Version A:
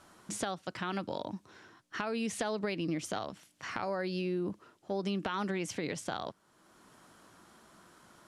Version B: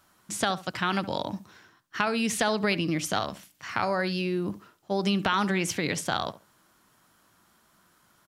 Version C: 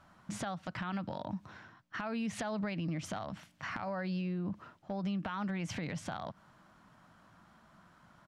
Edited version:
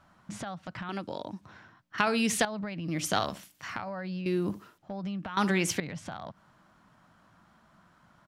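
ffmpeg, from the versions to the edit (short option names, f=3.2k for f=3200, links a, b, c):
-filter_complex "[1:a]asplit=4[a][b][c][d];[2:a]asplit=6[e][f][g][h][i][j];[e]atrim=end=0.892[k];[0:a]atrim=start=0.888:end=1.412[l];[f]atrim=start=1.408:end=1.982[m];[a]atrim=start=1.978:end=2.452[n];[g]atrim=start=2.448:end=3.07[o];[b]atrim=start=2.83:end=3.84[p];[h]atrim=start=3.6:end=4.262[q];[c]atrim=start=4.258:end=4.782[r];[i]atrim=start=4.778:end=5.372[s];[d]atrim=start=5.368:end=5.802[t];[j]atrim=start=5.798[u];[k][l]acrossfade=d=0.004:c1=hsin:c2=hsin[v];[v][m]acrossfade=d=0.004:c1=hsin:c2=hsin[w];[w][n]acrossfade=d=0.004:c1=hsin:c2=hsin[x];[x][o]acrossfade=d=0.004:c1=hsin:c2=hsin[y];[y][p]acrossfade=d=0.24:c1=tri:c2=tri[z];[z][q]acrossfade=d=0.24:c1=tri:c2=tri[aa];[aa][r]acrossfade=d=0.004:c1=hsin:c2=hsin[ab];[ab][s]acrossfade=d=0.004:c1=hsin:c2=hsin[ac];[ac][t]acrossfade=d=0.004:c1=hsin:c2=hsin[ad];[ad][u]acrossfade=d=0.004:c1=hsin:c2=hsin"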